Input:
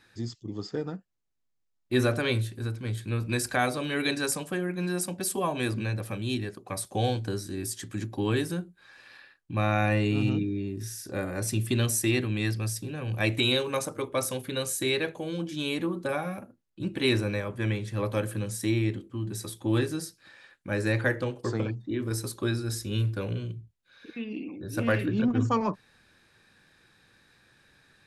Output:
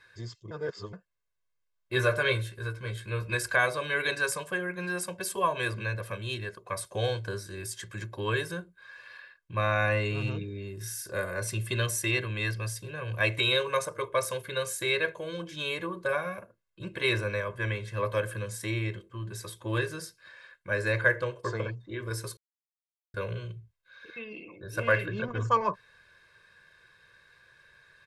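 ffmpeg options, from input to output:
ffmpeg -i in.wav -filter_complex "[0:a]asettb=1/sr,asplit=3[link_01][link_02][link_03];[link_01]atrim=end=1.954[link_04];[link_02]atrim=start=1.95:end=3.35,asetpts=PTS-STARTPTS,afade=type=in:duration=0.004:curve=qsin,afade=type=out:start_time=1.396:duration=0.004:curve=qsin,asplit=2[link_05][link_06];[link_06]adelay=15,volume=-6.5dB[link_07];[link_05][link_07]amix=inputs=2:normalize=0,atrim=end_sample=61740[link_08];[link_03]atrim=start=3.346[link_09];[link_04][link_08]acrossfade=duration=0.004:curve1=hsin:curve2=qsin[link_10];[link_10][link_09]acrossfade=duration=0.004:curve1=qsin:curve2=hsin,asettb=1/sr,asplit=3[link_11][link_12][link_13];[link_11]atrim=end=10.624[link_14];[link_12]atrim=start=10.62:end=11.34,asetpts=PTS-STARTPTS,afade=type=in:duration=0.004:curve=qsin,afade=type=out:start_time=0.716:duration=0.004:curve=qsin,highshelf=frequency=7700:gain=11[link_15];[link_13]atrim=start=11.336[link_16];[link_14][link_15]acrossfade=duration=0.004:curve1=hsin:curve2=qsin[link_17];[link_17][link_16]acrossfade=duration=0.004:curve1=qsin:curve2=hsin,asplit=5[link_18][link_19][link_20][link_21][link_22];[link_18]atrim=end=0.512[link_23];[link_19]atrim=start=0.508:end=0.932,asetpts=PTS-STARTPTS,areverse[link_24];[link_20]atrim=start=0.928:end=22.37,asetpts=PTS-STARTPTS,afade=type=out:start_time=21.438:duration=0.004:curve=hsin[link_25];[link_21]atrim=start=22.37:end=23.14,asetpts=PTS-STARTPTS,volume=0[link_26];[link_22]atrim=start=23.14,asetpts=PTS-STARTPTS,afade=type=in:duration=0.004:curve=hsin[link_27];[link_23][link_24]acrossfade=duration=0.004:curve1=hsin:curve2=hsin[link_28];[link_25][link_26][link_27]concat=n=3:v=0:a=1[link_29];[link_28][link_29]acrossfade=duration=0.004:curve1=hsin:curve2=hsin,equalizer=frequency=1500:width=0.57:gain=9,aecho=1:1:1.9:0.83,volume=-7dB" out.wav

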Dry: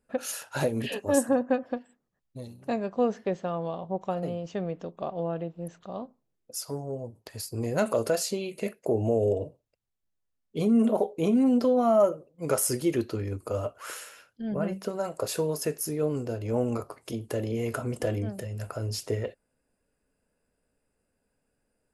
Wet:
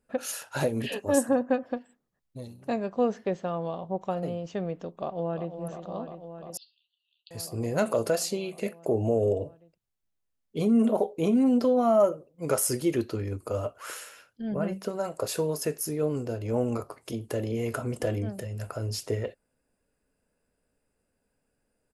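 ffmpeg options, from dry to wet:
ffmpeg -i in.wav -filter_complex "[0:a]asplit=2[link_01][link_02];[link_02]afade=type=in:start_time=4.94:duration=0.01,afade=type=out:start_time=5.57:duration=0.01,aecho=0:1:350|700|1050|1400|1750|2100|2450|2800|3150|3500|3850|4200:0.354813|0.301591|0.256353|0.2179|0.185215|0.157433|0.133818|0.113745|0.0966833|0.0821808|0.0698537|0.0593756[link_03];[link_01][link_03]amix=inputs=2:normalize=0,asettb=1/sr,asplit=3[link_04][link_05][link_06];[link_04]atrim=end=6.574[link_07];[link_05]atrim=start=6.57:end=7.31,asetpts=PTS-STARTPTS,afade=type=in:duration=0.004:curve=qsin,afade=type=out:start_time=0.736:duration=0.004:curve=qsin,asuperpass=centerf=3500:order=12:qfactor=2[link_08];[link_06]atrim=start=7.306[link_09];[link_07][link_08]acrossfade=duration=0.004:curve1=hsin:curve2=qsin[link_10];[link_10][link_09]acrossfade=duration=0.004:curve1=qsin:curve2=hsin" out.wav

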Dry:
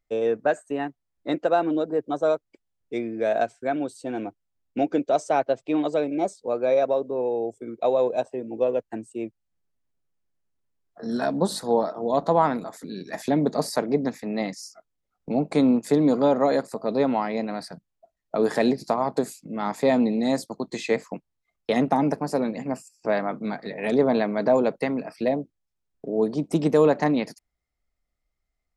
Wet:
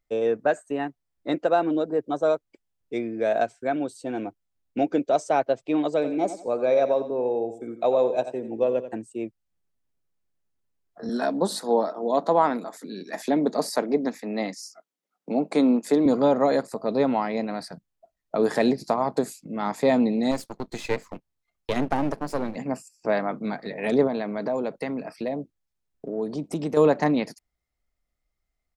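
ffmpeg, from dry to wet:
ffmpeg -i in.wav -filter_complex "[0:a]asplit=3[link_01][link_02][link_03];[link_01]afade=type=out:start_time=6.01:duration=0.02[link_04];[link_02]aecho=1:1:88|176|264:0.266|0.0798|0.0239,afade=type=in:start_time=6.01:duration=0.02,afade=type=out:start_time=9:duration=0.02[link_05];[link_03]afade=type=in:start_time=9:duration=0.02[link_06];[link_04][link_05][link_06]amix=inputs=3:normalize=0,asettb=1/sr,asplit=3[link_07][link_08][link_09];[link_07]atrim=end=11.094[link_10];[link_08]atrim=start=11.09:end=16.06,asetpts=PTS-STARTPTS,afade=type=in:duration=0.004:curve=qsin,afade=type=out:start_time=4.966:duration=0.004:curve=qsin,highpass=frequency=200:width=0.5412,highpass=frequency=200:width=1.3066[link_11];[link_09]atrim=start=16.056[link_12];[link_10][link_11]acrossfade=duration=0.004:curve1=hsin:curve2=qsin[link_13];[link_13][link_12]acrossfade=duration=0.004:curve1=qsin:curve2=hsin,asettb=1/sr,asplit=3[link_14][link_15][link_16];[link_14]atrim=end=20.314[link_17];[link_15]atrim=start=20.31:end=22.56,asetpts=PTS-STARTPTS,afade=type=in:duration=0.004:curve=qsin,afade=type=out:start_time=2.246:duration=0.004:curve=qsin,aeval=exprs='if(lt(val(0),0),0.251*val(0),val(0))':channel_layout=same[link_18];[link_16]atrim=start=22.556[link_19];[link_17][link_18]acrossfade=duration=0.004:curve1=hsin:curve2=qsin[link_20];[link_20][link_19]acrossfade=duration=0.004:curve1=qsin:curve2=hsin,asettb=1/sr,asplit=3[link_21][link_22][link_23];[link_21]atrim=end=24.074[link_24];[link_22]atrim=start=24.07:end=26.77,asetpts=PTS-STARTPTS,afade=type=in:duration=0.004:curve=qsin,afade=type=out:start_time=2.696:duration=0.004:curve=qsin,acompressor=threshold=-28dB:ratio=2:attack=3.2:release=140:knee=1:detection=peak[link_25];[link_23]atrim=start=26.766[link_26];[link_24][link_25]acrossfade=duration=0.004:curve1=hsin:curve2=qsin[link_27];[link_27][link_26]acrossfade=duration=0.004:curve1=qsin:curve2=hsin" out.wav

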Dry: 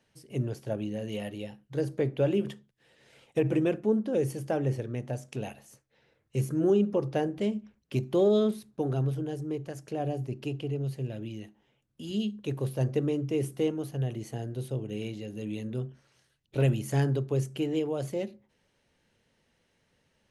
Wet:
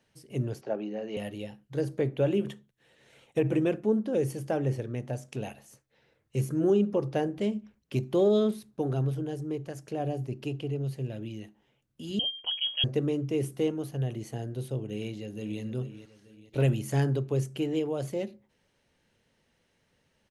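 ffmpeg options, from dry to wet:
ffmpeg -i in.wav -filter_complex "[0:a]asettb=1/sr,asplit=3[link_01][link_02][link_03];[link_01]atrim=end=0.614[link_04];[link_02]atrim=start=0.61:end=1.17,asetpts=PTS-STARTPTS,afade=type=in:duration=0.004:curve=qsin,afade=type=out:start_time=0.556:duration=0.004:curve=qsin,highpass=frequency=200:width=0.5412,highpass=frequency=200:width=1.3066,equalizer=frequency=250:width_type=q:width=4:gain=-4,equalizer=frequency=400:width_type=q:width=4:gain=4,equalizer=frequency=770:width_type=q:width=4:gain=7,equalizer=frequency=1300:width_type=q:width=4:gain=4,equalizer=frequency=3400:width_type=q:width=4:gain=-9,lowpass=frequency=5200:width=0.5412,lowpass=frequency=5200:width=1.3066[link_05];[link_03]atrim=start=1.166[link_06];[link_04][link_05]acrossfade=duration=0.004:curve1=hsin:curve2=qsin[link_07];[link_07][link_06]acrossfade=duration=0.004:curve1=qsin:curve2=hsin,asettb=1/sr,asplit=3[link_08][link_09][link_10];[link_08]atrim=end=2.014[link_11];[link_09]atrim=start=2.01:end=3.59,asetpts=PTS-STARTPTS,afade=type=in:duration=0.004:curve=qsin,afade=type=out:start_time=1.576:duration=0.004:curve=qsin,bandreject=frequency=4900:width=7.8[link_12];[link_10]atrim=start=3.586[link_13];[link_11][link_12]acrossfade=duration=0.004:curve1=hsin:curve2=qsin[link_14];[link_14][link_13]acrossfade=duration=0.004:curve1=qsin:curve2=hsin,asettb=1/sr,asplit=3[link_15][link_16][link_17];[link_15]atrim=end=12.194[link_18];[link_16]atrim=start=12.19:end=12.84,asetpts=PTS-STARTPTS,afade=type=in:duration=0.004:curve=qsin,afade=type=out:start_time=0.646:duration=0.004:curve=qsin,lowpass=frequency=2900:width_type=q:width=0.5098,lowpass=frequency=2900:width_type=q:width=0.6013,lowpass=frequency=2900:width_type=q:width=0.9,lowpass=frequency=2900:width_type=q:width=2.563,afreqshift=-3400[link_19];[link_17]atrim=start=12.836[link_20];[link_18][link_19]acrossfade=duration=0.004:curve1=hsin:curve2=qsin[link_21];[link_21][link_20]acrossfade=duration=0.004:curve1=qsin:curve2=hsin,asplit=2[link_22][link_23];[link_23]afade=type=in:start_time=14.94:duration=0.01,afade=type=out:start_time=15.61:duration=0.01,aecho=0:1:440|880|1320|1760|2200:0.251189|0.113035|0.0508657|0.0228896|0.0103003[link_24];[link_22][link_24]amix=inputs=2:normalize=0" out.wav

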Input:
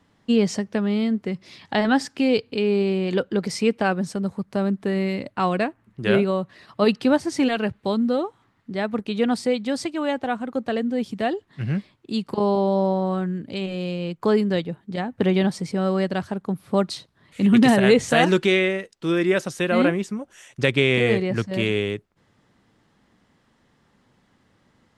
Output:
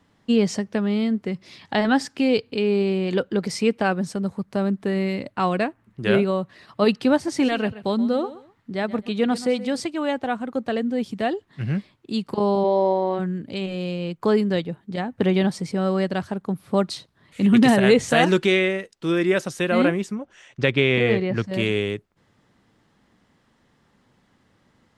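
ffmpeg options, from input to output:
ffmpeg -i in.wav -filter_complex "[0:a]asettb=1/sr,asplit=3[link_01][link_02][link_03];[link_01]atrim=end=7.154[link_04];[link_02]atrim=start=7.15:end=9.8,asetpts=PTS-STARTPTS,afade=type=in:duration=0.004:curve=qsin,afade=type=out:start_time=2.646:duration=0.004:curve=qsin,aecho=1:1:127|254:0.158|0.038,atrim=end_sample=116865[link_05];[link_03]atrim=start=9.796[link_06];[link_04][link_05]acrossfade=duration=0.004:curve1=hsin:curve2=qsin[link_07];[link_07][link_06]acrossfade=duration=0.004:curve1=qsin:curve2=hsin,asplit=3[link_08][link_09][link_10];[link_08]afade=type=out:start_time=12.63:duration=0.02[link_11];[link_09]highpass=310,equalizer=frequency=340:width_type=q:width=4:gain=8,equalizer=frequency=540:width_type=q:width=4:gain=3,equalizer=frequency=910:width_type=q:width=4:gain=6,equalizer=frequency=1300:width_type=q:width=4:gain=-8,equalizer=frequency=2100:width_type=q:width=4:gain=8,lowpass=frequency=5900:width=0.5412,lowpass=frequency=5900:width=1.3066,afade=type=in:start_time=12.63:duration=0.02,afade=type=out:start_time=13.18:duration=0.02[link_12];[link_10]afade=type=in:start_time=13.18:duration=0.02[link_13];[link_11][link_12][link_13]amix=inputs=3:normalize=0,asettb=1/sr,asplit=3[link_14][link_15][link_16];[link_14]atrim=end=20.154[link_17];[link_15]atrim=start=20.15:end=21.44,asetpts=PTS-STARTPTS,afade=type=in:duration=0.004:curve=qsin,afade=type=out:start_time=1.286:duration=0.004:curve=qsin,lowpass=4500[link_18];[link_16]atrim=start=21.436[link_19];[link_17][link_18]acrossfade=duration=0.004:curve1=hsin:curve2=qsin[link_20];[link_20][link_19]acrossfade=duration=0.004:curve1=qsin:curve2=hsin" out.wav

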